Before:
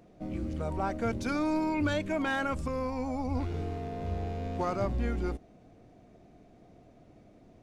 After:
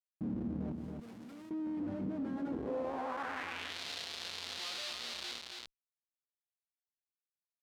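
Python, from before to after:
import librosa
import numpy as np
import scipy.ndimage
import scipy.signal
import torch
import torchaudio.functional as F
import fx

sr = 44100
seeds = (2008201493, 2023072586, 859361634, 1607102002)

y = fx.wow_flutter(x, sr, seeds[0], rate_hz=2.1, depth_cents=25.0)
y = fx.comb_fb(y, sr, f0_hz=120.0, decay_s=0.47, harmonics='all', damping=0.0, mix_pct=70)
y = fx.schmitt(y, sr, flips_db=-48.0)
y = fx.filter_sweep_bandpass(y, sr, from_hz=220.0, to_hz=4000.0, start_s=2.34, end_s=3.79, q=2.6)
y = fx.pre_emphasis(y, sr, coefficient=0.97, at=(0.72, 1.51))
y = y + 10.0 ** (-9.0 / 20.0) * np.pad(y, (int(276 * sr / 1000.0), 0))[:len(y)]
y = fx.env_flatten(y, sr, amount_pct=50)
y = F.gain(torch.from_numpy(y), 9.0).numpy()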